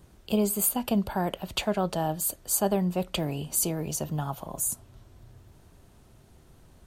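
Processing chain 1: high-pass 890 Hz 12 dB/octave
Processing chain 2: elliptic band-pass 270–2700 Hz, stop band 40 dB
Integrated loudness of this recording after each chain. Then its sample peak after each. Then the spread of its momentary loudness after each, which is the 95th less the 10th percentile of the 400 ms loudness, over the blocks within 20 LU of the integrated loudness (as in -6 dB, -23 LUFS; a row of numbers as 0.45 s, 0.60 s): -31.0 LUFS, -33.5 LUFS; -11.5 dBFS, -15.0 dBFS; 13 LU, 10 LU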